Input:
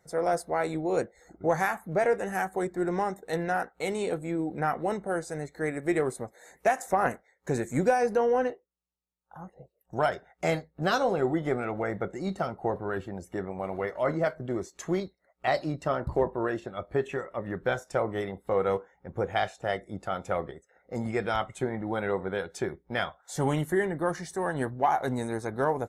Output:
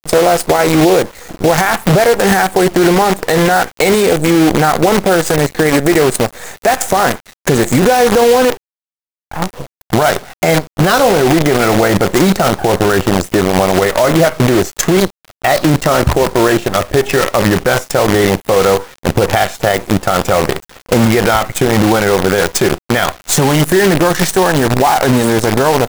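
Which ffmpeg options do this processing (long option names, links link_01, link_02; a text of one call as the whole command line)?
ffmpeg -i in.wav -af "acompressor=threshold=-28dB:ratio=12,acrusher=bits=7:dc=4:mix=0:aa=0.000001,alimiter=level_in=28.5dB:limit=-1dB:release=50:level=0:latency=1,volume=-1dB" out.wav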